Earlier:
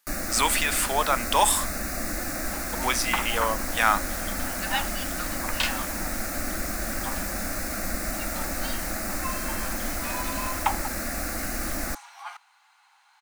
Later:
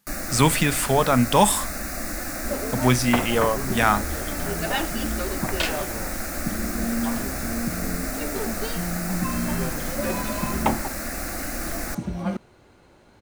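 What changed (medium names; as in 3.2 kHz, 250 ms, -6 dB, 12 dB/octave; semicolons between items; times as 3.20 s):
speech: remove high-pass 800 Hz 12 dB/octave; second sound: remove Chebyshev high-pass 790 Hz, order 6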